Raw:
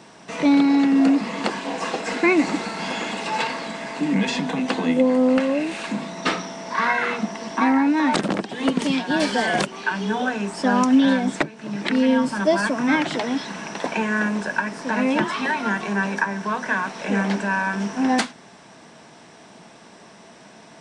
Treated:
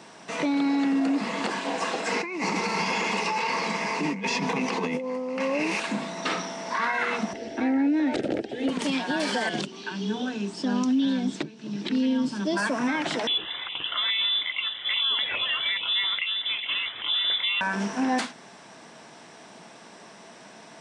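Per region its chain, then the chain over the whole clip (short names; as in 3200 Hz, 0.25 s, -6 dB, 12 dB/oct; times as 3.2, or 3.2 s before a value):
2.12–5.8 ripple EQ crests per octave 0.82, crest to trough 9 dB + negative-ratio compressor -25 dBFS
7.33–8.69 RIAA curve playback + fixed phaser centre 440 Hz, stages 4
9.49–12.57 LPF 5500 Hz + band shelf 1100 Hz -12 dB 2.5 oct
13.27–17.61 LFO notch saw down 2.4 Hz 750–2300 Hz + inverted band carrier 3700 Hz
whole clip: HPF 78 Hz; low shelf 260 Hz -5.5 dB; limiter -17.5 dBFS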